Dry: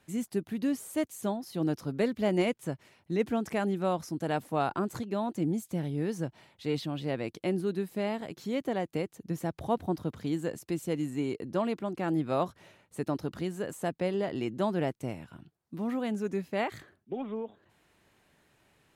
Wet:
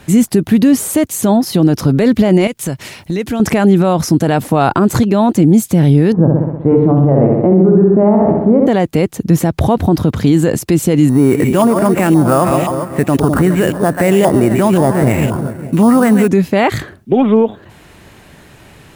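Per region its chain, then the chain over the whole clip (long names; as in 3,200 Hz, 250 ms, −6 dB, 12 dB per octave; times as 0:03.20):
0:02.47–0:03.40: high-shelf EQ 2,200 Hz +9.5 dB + downward compressor 3 to 1, threshold −46 dBFS
0:06.12–0:08.67: low-pass filter 1,100 Hz 24 dB per octave + mains-hum notches 50/100/150/200/250/300/350/400/450 Hz + flutter between parallel walls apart 10.9 metres, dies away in 0.97 s
0:11.09–0:16.28: echo with a time of its own for lows and highs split 650 Hz, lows 203 ms, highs 136 ms, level −11.5 dB + auto-filter low-pass saw up 1.9 Hz 940–3,200 Hz + sample-rate reduction 10,000 Hz
whole clip: low-shelf EQ 210 Hz +7 dB; boost into a limiter +25 dB; level −1 dB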